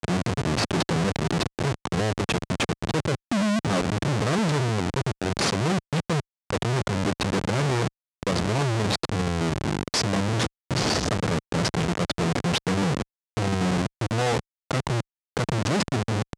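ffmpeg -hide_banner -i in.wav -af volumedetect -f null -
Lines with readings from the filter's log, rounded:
mean_volume: -25.4 dB
max_volume: -13.2 dB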